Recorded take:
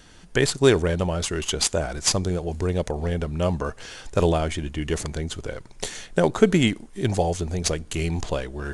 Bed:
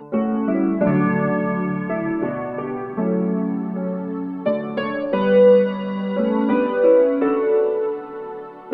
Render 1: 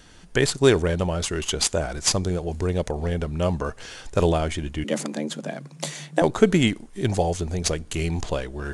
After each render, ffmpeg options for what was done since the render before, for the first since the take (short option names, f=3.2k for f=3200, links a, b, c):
-filter_complex "[0:a]asettb=1/sr,asplit=3[a][b][c];[a]atrim=end=4.844[d];[b]atrim=start=4.84:end=6.22,asetpts=PTS-STARTPTS,afade=t=in:d=0.004:c=qsin,afade=t=out:st=1.376:d=0.004:c=qsin,afreqshift=140[e];[c]atrim=start=6.216[f];[d][e]acrossfade=d=0.004:c1=hsin:c2=qsin[g];[g][f]acrossfade=d=0.004:c1=qsin:c2=hsin"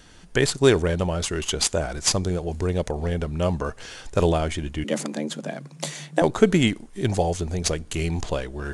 -af anull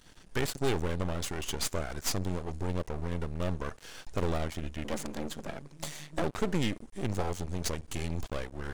-af "aeval=exprs='(tanh(3.55*val(0)+0.6)-tanh(0.6))/3.55':c=same,aeval=exprs='max(val(0),0)':c=same"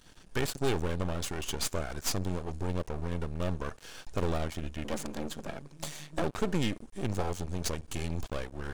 -af "bandreject=f=2k:w=17"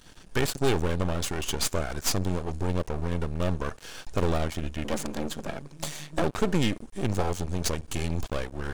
-af "volume=5dB"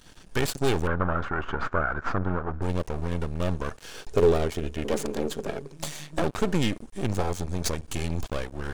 -filter_complex "[0:a]asettb=1/sr,asplit=3[a][b][c];[a]atrim=end=0.874[d];[b]atrim=start=0.87:end=2.62,asetpts=PTS-STARTPTS,afade=t=in:d=0.004:c=qsin,afade=t=out:st=1.746:d=0.004:c=qsin,lowpass=f=1.4k:t=q:w=4.8[e];[c]atrim=start=2.616[f];[d][e]acrossfade=d=0.004:c1=hsin:c2=qsin[g];[g][f]acrossfade=d=0.004:c1=qsin:c2=hsin,asettb=1/sr,asplit=3[h][i][j];[h]atrim=end=3.944[k];[i]atrim=start=3.94:end=5.75,asetpts=PTS-STARTPTS,afade=t=in:d=0.004:c=qsin,afade=t=out:st=1.806:d=0.004:c=qsin,equalizer=f=420:t=o:w=0.34:g=14[l];[j]atrim=start=5.746[m];[k][l]acrossfade=d=0.004:c1=hsin:c2=qsin[n];[n][m]acrossfade=d=0.004:c1=qsin:c2=hsin,asettb=1/sr,asplit=3[o][p][q];[o]atrim=end=7.264[r];[p]atrim=start=7.26:end=7.79,asetpts=PTS-STARTPTS,afade=t=in:d=0.004:c=qsin,afade=t=out:st=0.526:d=0.004:c=qsin,bandreject=f=2.9k:w=11[s];[q]atrim=start=7.786[t];[r][s]acrossfade=d=0.004:c1=hsin:c2=qsin[u];[u][t]acrossfade=d=0.004:c1=qsin:c2=hsin"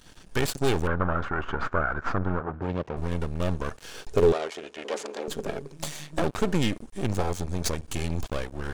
-filter_complex "[0:a]asettb=1/sr,asplit=3[a][b][c];[a]atrim=end=2.404[d];[b]atrim=start=2.4:end=2.97,asetpts=PTS-STARTPTS,afade=t=in:d=0.004:c=qsin,afade=t=out:st=0.566:d=0.004:c=qsin,highpass=100,lowpass=3k[e];[c]atrim=start=2.966[f];[d][e]acrossfade=d=0.004:c1=hsin:c2=qsin[g];[g][f]acrossfade=d=0.004:c1=qsin:c2=hsin,asettb=1/sr,asplit=3[h][i][j];[h]atrim=end=4.324[k];[i]atrim=start=4.32:end=5.28,asetpts=PTS-STARTPTS,afade=t=in:d=0.004:c=qsin,afade=t=out:st=0.956:d=0.004:c=qsin,highpass=510,lowpass=7k[l];[j]atrim=start=5.276[m];[k][l]acrossfade=d=0.004:c1=hsin:c2=qsin[n];[n][m]acrossfade=d=0.004:c1=qsin:c2=hsin"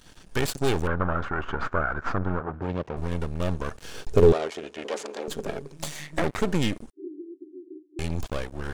-filter_complex "[0:a]asettb=1/sr,asplit=3[a][b][c];[a]atrim=end=3.754[d];[b]atrim=start=3.75:end=4.87,asetpts=PTS-STARTPTS,afade=t=in:d=0.004:c=qsin,afade=t=out:st=1.116:d=0.004:c=qsin,lowshelf=f=350:g=7[e];[c]atrim=start=4.866[f];[d][e]acrossfade=d=0.004:c1=hsin:c2=qsin[g];[g][f]acrossfade=d=0.004:c1=qsin:c2=hsin,asettb=1/sr,asplit=3[h][i][j];[h]atrim=end=5.964[k];[i]atrim=start=5.96:end=6.41,asetpts=PTS-STARTPTS,afade=t=in:d=0.004:c=qsin,afade=t=out:st=0.446:d=0.004:c=qsin,equalizer=f=2k:t=o:w=0.31:g=12[l];[j]atrim=start=6.406[m];[k][l]acrossfade=d=0.004:c1=hsin:c2=qsin[n];[n][m]acrossfade=d=0.004:c1=qsin:c2=hsin,asettb=1/sr,asplit=3[o][p][q];[o]atrim=end=6.914[r];[p]atrim=start=6.91:end=7.99,asetpts=PTS-STARTPTS,afade=t=in:d=0.004:c=qsin,afade=t=out:st=1.076:d=0.004:c=qsin,asuperpass=centerf=330:order=12:qfactor=3.3[s];[q]atrim=start=7.986[t];[r][s]acrossfade=d=0.004:c1=hsin:c2=qsin[u];[u][t]acrossfade=d=0.004:c1=qsin:c2=hsin"